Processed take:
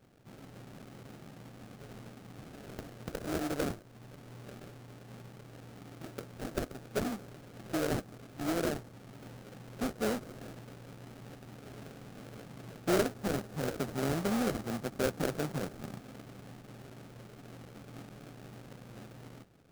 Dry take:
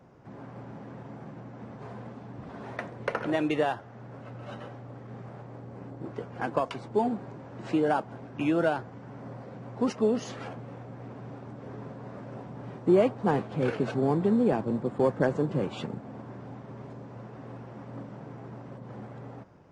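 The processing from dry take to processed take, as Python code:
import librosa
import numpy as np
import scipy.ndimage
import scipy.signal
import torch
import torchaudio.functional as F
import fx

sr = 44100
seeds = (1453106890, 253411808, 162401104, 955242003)

y = fx.sample_hold(x, sr, seeds[0], rate_hz=1000.0, jitter_pct=20)
y = fx.dynamic_eq(y, sr, hz=2800.0, q=1.1, threshold_db=-47.0, ratio=4.0, max_db=-4)
y = y * librosa.db_to_amplitude(-7.0)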